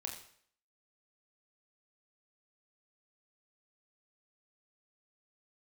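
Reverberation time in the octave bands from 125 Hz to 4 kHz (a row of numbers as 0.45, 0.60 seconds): 0.60, 0.55, 0.60, 0.60, 0.60, 0.55 seconds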